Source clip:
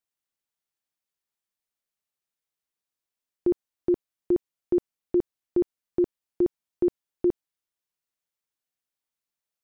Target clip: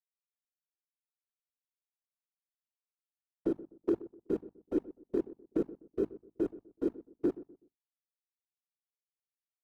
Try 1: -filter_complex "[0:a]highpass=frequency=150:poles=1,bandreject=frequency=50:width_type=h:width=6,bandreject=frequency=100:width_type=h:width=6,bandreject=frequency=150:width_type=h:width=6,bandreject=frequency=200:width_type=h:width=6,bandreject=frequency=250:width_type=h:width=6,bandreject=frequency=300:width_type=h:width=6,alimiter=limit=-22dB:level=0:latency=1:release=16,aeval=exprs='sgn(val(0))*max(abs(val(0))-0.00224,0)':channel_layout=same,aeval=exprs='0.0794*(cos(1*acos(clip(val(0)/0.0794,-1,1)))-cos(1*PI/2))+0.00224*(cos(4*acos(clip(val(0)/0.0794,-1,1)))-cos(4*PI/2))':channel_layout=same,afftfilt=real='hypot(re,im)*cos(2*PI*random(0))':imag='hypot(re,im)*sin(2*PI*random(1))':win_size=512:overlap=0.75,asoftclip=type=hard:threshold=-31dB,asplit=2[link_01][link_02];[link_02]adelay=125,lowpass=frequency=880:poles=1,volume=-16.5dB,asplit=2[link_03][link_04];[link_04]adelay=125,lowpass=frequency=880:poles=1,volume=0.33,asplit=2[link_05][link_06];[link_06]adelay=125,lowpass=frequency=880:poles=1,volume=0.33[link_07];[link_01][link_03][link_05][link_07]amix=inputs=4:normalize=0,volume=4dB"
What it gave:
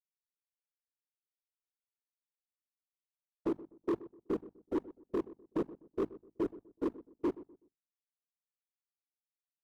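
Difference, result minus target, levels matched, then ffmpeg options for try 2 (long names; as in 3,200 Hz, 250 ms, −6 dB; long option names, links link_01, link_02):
hard clipping: distortion +17 dB
-filter_complex "[0:a]highpass=frequency=150:poles=1,bandreject=frequency=50:width_type=h:width=6,bandreject=frequency=100:width_type=h:width=6,bandreject=frequency=150:width_type=h:width=6,bandreject=frequency=200:width_type=h:width=6,bandreject=frequency=250:width_type=h:width=6,bandreject=frequency=300:width_type=h:width=6,alimiter=limit=-22dB:level=0:latency=1:release=16,aeval=exprs='sgn(val(0))*max(abs(val(0))-0.00224,0)':channel_layout=same,aeval=exprs='0.0794*(cos(1*acos(clip(val(0)/0.0794,-1,1)))-cos(1*PI/2))+0.00224*(cos(4*acos(clip(val(0)/0.0794,-1,1)))-cos(4*PI/2))':channel_layout=same,afftfilt=real='hypot(re,im)*cos(2*PI*random(0))':imag='hypot(re,im)*sin(2*PI*random(1))':win_size=512:overlap=0.75,asoftclip=type=hard:threshold=-24dB,asplit=2[link_01][link_02];[link_02]adelay=125,lowpass=frequency=880:poles=1,volume=-16.5dB,asplit=2[link_03][link_04];[link_04]adelay=125,lowpass=frequency=880:poles=1,volume=0.33,asplit=2[link_05][link_06];[link_06]adelay=125,lowpass=frequency=880:poles=1,volume=0.33[link_07];[link_01][link_03][link_05][link_07]amix=inputs=4:normalize=0,volume=4dB"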